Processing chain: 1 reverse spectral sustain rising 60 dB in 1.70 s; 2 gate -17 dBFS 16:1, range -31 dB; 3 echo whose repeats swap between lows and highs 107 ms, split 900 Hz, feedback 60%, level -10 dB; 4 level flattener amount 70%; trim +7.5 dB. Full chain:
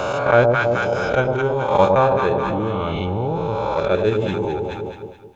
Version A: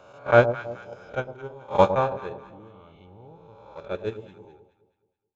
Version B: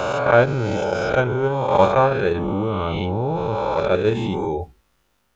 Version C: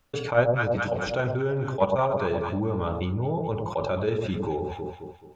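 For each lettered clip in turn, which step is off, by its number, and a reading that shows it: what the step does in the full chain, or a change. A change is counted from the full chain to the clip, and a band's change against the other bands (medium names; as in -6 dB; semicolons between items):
4, crest factor change +6.5 dB; 3, momentary loudness spread change -2 LU; 1, 125 Hz band +3.5 dB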